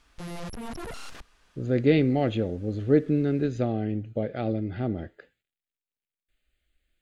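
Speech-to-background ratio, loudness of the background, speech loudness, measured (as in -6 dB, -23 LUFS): 13.0 dB, -39.5 LUFS, -26.5 LUFS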